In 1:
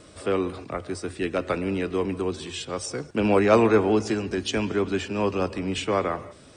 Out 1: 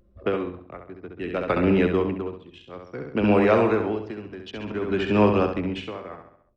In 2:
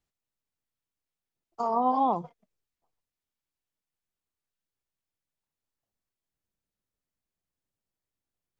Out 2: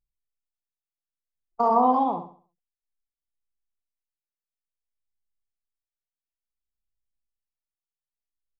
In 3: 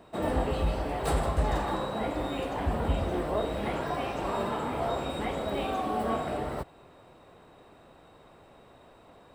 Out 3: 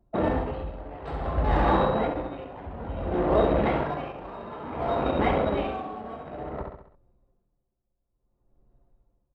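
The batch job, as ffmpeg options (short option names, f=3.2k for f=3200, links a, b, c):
-filter_complex "[0:a]acrossover=split=4200[a][b];[b]acompressor=threshold=-60dB:ratio=4:attack=1:release=60[c];[a][c]amix=inputs=2:normalize=0,anlmdn=6.31,acompressor=threshold=-24dB:ratio=12,aecho=1:1:67|134|201|268|335:0.501|0.21|0.0884|0.0371|0.0156,aeval=exprs='val(0)*pow(10,-18*(0.5-0.5*cos(2*PI*0.57*n/s))/20)':c=same,volume=9dB"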